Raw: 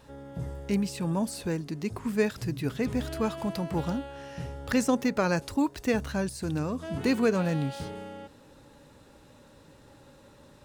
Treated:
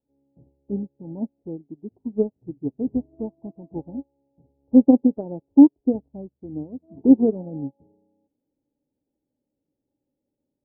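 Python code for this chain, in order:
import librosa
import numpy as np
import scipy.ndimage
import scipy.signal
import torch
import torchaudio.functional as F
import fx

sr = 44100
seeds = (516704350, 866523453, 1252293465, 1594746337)

y = scipy.signal.sosfilt(scipy.signal.butter(12, 860.0, 'lowpass', fs=sr, output='sos'), x)
y = fx.peak_eq(y, sr, hz=290.0, db=12.0, octaves=1.1)
y = fx.upward_expand(y, sr, threshold_db=-36.0, expansion=2.5)
y = y * librosa.db_to_amplitude(5.0)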